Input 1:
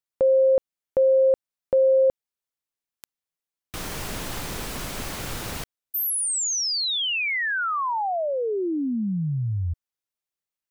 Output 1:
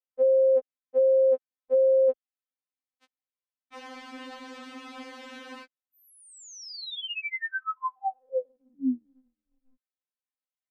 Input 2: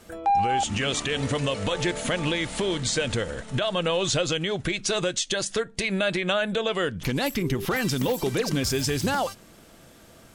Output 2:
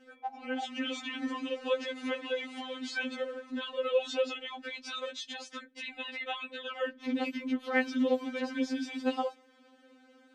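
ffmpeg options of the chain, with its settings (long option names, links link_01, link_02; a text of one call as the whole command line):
ffmpeg -i in.wav -af "highpass=100,lowpass=3200,afftfilt=real='re*3.46*eq(mod(b,12),0)':imag='im*3.46*eq(mod(b,12),0)':win_size=2048:overlap=0.75,volume=-5dB" out.wav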